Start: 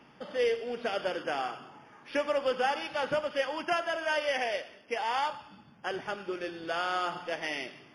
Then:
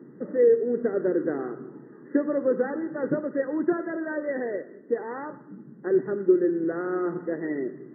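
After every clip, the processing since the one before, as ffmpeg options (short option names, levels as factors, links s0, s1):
-af "afftfilt=real='re*between(b*sr/4096,120,2000)':imag='im*between(b*sr/4096,120,2000)':win_size=4096:overlap=0.75,lowshelf=f=540:t=q:w=3:g=12,volume=0.794"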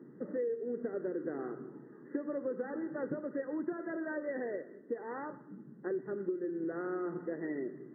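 -af "acompressor=threshold=0.0447:ratio=6,volume=0.501"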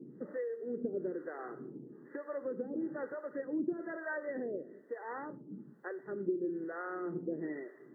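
-filter_complex "[0:a]acrossover=split=520[s0][s1];[s0]aeval=exprs='val(0)*(1-1/2+1/2*cos(2*PI*1.1*n/s))':c=same[s2];[s1]aeval=exprs='val(0)*(1-1/2-1/2*cos(2*PI*1.1*n/s))':c=same[s3];[s2][s3]amix=inputs=2:normalize=0,volume=1.58"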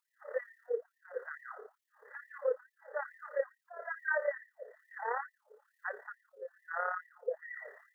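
-af "tremolo=f=35:d=0.571,afftfilt=real='re*gte(b*sr/1024,390*pow(1800/390,0.5+0.5*sin(2*PI*2.3*pts/sr)))':imag='im*gte(b*sr/1024,390*pow(1800/390,0.5+0.5*sin(2*PI*2.3*pts/sr)))':win_size=1024:overlap=0.75,volume=3.16"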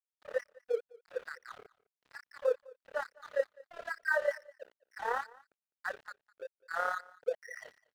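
-af "aeval=exprs='sgn(val(0))*max(abs(val(0))-0.00316,0)':c=same,aecho=1:1:205:0.0668,volume=1.41"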